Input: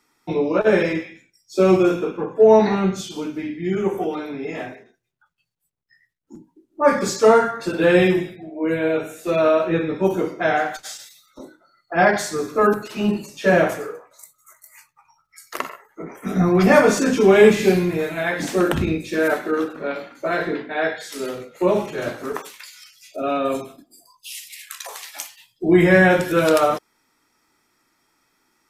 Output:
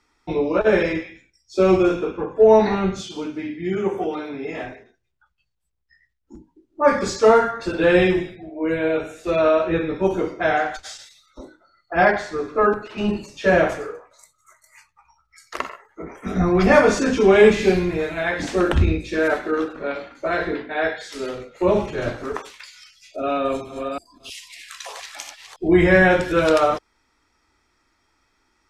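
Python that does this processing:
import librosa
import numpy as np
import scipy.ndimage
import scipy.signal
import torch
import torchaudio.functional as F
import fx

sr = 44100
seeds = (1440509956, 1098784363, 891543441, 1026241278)

y = fx.highpass(x, sr, hz=92.0, slope=12, at=(2.98, 4.64))
y = fx.bass_treble(y, sr, bass_db=-4, treble_db=-13, at=(12.12, 12.98))
y = fx.low_shelf(y, sr, hz=200.0, db=7.5, at=(21.68, 22.24))
y = fx.reverse_delay(y, sr, ms=316, wet_db=-5.0, at=(23.35, 25.68))
y = scipy.signal.sosfilt(scipy.signal.butter(2, 6300.0, 'lowpass', fs=sr, output='sos'), y)
y = fx.low_shelf_res(y, sr, hz=100.0, db=12.0, q=1.5)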